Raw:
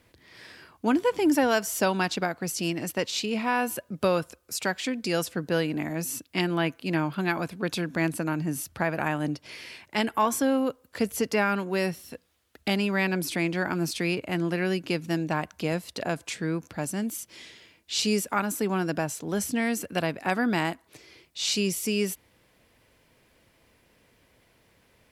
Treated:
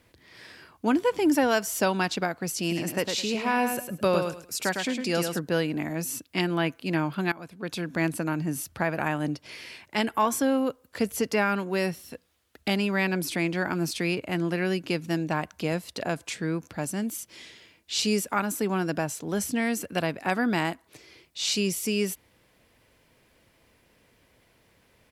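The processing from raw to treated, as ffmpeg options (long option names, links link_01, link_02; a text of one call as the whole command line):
ffmpeg -i in.wav -filter_complex "[0:a]asplit=3[link_01][link_02][link_03];[link_01]afade=type=out:start_time=2.69:duration=0.02[link_04];[link_02]aecho=1:1:106|212|318:0.531|0.117|0.0257,afade=type=in:start_time=2.69:duration=0.02,afade=type=out:start_time=5.38:duration=0.02[link_05];[link_03]afade=type=in:start_time=5.38:duration=0.02[link_06];[link_04][link_05][link_06]amix=inputs=3:normalize=0,asplit=2[link_07][link_08];[link_07]atrim=end=7.32,asetpts=PTS-STARTPTS,afade=type=out:start_time=7.316:duration=0.004:curve=hsin:silence=0.141254[link_09];[link_08]atrim=start=7.32,asetpts=PTS-STARTPTS,afade=type=in:duration=0.67:silence=0.141254[link_10];[link_09][link_10]concat=n=2:v=0:a=1" out.wav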